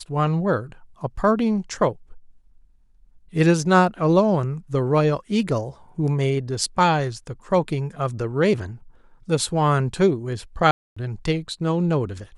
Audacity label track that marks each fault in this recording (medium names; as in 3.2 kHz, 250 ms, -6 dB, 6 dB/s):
10.710000	10.960000	dropout 255 ms